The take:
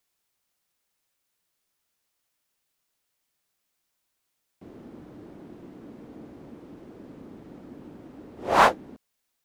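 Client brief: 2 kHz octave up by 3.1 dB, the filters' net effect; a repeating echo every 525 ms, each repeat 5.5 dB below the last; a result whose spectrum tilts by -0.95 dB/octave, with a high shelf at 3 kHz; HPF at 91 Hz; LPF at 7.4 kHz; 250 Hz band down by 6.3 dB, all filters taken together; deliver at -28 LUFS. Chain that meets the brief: high-pass 91 Hz; low-pass 7.4 kHz; peaking EQ 250 Hz -8.5 dB; peaking EQ 2 kHz +7 dB; treble shelf 3 kHz -8 dB; feedback delay 525 ms, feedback 53%, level -5.5 dB; trim -6 dB

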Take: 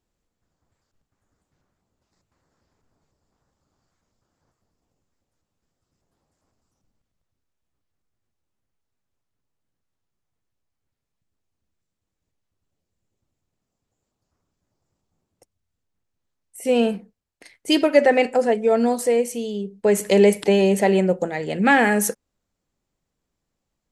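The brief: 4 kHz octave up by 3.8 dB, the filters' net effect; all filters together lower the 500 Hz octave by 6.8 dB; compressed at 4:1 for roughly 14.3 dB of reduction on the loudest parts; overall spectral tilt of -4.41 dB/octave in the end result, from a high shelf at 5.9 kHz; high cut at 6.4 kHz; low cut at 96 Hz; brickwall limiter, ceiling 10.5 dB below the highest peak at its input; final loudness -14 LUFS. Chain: high-pass 96 Hz; low-pass 6.4 kHz; peaking EQ 500 Hz -8.5 dB; peaking EQ 4 kHz +7.5 dB; treble shelf 5.9 kHz -4 dB; compression 4:1, threshold -31 dBFS; trim +22 dB; peak limiter -3.5 dBFS

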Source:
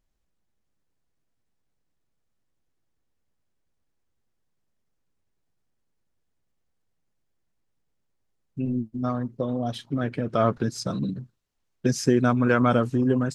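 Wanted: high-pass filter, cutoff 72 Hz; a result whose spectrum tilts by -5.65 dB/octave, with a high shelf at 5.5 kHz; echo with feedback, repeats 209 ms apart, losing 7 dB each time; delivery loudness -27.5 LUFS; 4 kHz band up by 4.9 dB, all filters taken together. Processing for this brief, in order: high-pass 72 Hz; peaking EQ 4 kHz +5 dB; treble shelf 5.5 kHz +3.5 dB; feedback delay 209 ms, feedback 45%, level -7 dB; trim -3 dB

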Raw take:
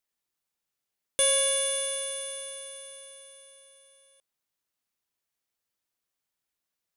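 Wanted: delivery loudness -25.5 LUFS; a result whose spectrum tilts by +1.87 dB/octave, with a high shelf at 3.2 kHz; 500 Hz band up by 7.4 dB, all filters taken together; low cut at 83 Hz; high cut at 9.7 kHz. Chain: high-pass 83 Hz; low-pass 9.7 kHz; peaking EQ 500 Hz +8 dB; treble shelf 3.2 kHz -4.5 dB; trim +1.5 dB

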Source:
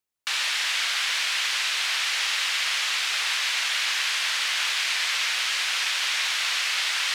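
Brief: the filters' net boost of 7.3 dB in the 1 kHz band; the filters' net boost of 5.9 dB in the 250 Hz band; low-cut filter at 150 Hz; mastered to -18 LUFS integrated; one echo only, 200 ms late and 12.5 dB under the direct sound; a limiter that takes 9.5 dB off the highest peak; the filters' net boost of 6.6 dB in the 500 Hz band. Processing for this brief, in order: high-pass 150 Hz; peaking EQ 250 Hz +6 dB; peaking EQ 500 Hz +4 dB; peaking EQ 1 kHz +8.5 dB; peak limiter -20.5 dBFS; delay 200 ms -12.5 dB; trim +9 dB

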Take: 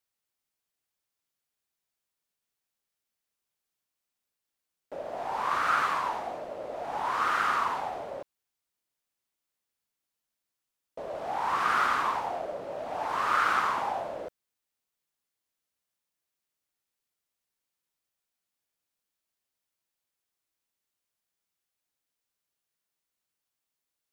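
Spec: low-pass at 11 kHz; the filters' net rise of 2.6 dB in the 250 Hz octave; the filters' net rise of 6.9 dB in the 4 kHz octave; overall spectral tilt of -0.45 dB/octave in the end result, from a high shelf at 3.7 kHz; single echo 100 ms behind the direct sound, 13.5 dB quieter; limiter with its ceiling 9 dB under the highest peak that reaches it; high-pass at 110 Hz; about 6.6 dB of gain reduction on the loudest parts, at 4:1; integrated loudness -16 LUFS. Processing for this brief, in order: high-pass 110 Hz; low-pass 11 kHz; peaking EQ 250 Hz +3.5 dB; treble shelf 3.7 kHz +4 dB; peaking EQ 4 kHz +6.5 dB; compression 4:1, threshold -28 dBFS; peak limiter -27 dBFS; delay 100 ms -13.5 dB; trim +20 dB

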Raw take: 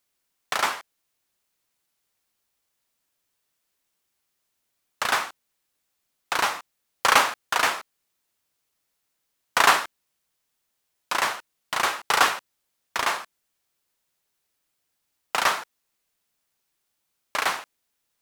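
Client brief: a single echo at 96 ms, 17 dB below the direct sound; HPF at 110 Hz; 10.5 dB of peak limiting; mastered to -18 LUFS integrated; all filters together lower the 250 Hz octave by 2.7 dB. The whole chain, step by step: high-pass 110 Hz; peaking EQ 250 Hz -3.5 dB; peak limiter -13.5 dBFS; delay 96 ms -17 dB; trim +10 dB

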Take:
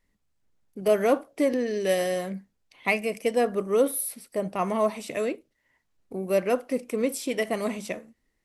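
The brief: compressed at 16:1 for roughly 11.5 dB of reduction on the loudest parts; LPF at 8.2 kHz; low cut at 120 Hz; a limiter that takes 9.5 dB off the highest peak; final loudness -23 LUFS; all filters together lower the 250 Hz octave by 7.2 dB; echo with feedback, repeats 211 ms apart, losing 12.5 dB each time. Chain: high-pass 120 Hz; low-pass 8.2 kHz; peaking EQ 250 Hz -8.5 dB; compression 16:1, threshold -30 dBFS; peak limiter -26.5 dBFS; feedback delay 211 ms, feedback 24%, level -12.5 dB; trim +14.5 dB

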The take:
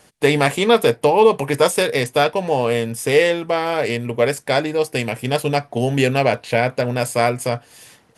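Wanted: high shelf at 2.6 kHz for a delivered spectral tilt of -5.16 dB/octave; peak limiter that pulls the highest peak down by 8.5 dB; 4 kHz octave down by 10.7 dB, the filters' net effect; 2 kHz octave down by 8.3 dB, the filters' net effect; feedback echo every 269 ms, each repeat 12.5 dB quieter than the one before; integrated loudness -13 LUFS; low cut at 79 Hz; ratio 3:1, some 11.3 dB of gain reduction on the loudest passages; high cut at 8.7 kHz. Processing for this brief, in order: high-pass 79 Hz; low-pass 8.7 kHz; peaking EQ 2 kHz -6 dB; treble shelf 2.6 kHz -5.5 dB; peaking EQ 4 kHz -7 dB; compression 3:1, threshold -25 dBFS; peak limiter -20.5 dBFS; feedback delay 269 ms, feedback 24%, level -12.5 dB; trim +17.5 dB

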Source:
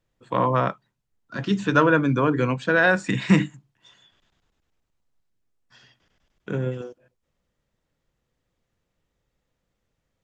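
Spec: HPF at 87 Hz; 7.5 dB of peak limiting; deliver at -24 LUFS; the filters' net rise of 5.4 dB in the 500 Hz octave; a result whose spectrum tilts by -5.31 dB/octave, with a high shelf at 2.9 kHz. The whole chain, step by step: high-pass 87 Hz; peaking EQ 500 Hz +6 dB; treble shelf 2.9 kHz +3.5 dB; trim -2 dB; peak limiter -11.5 dBFS

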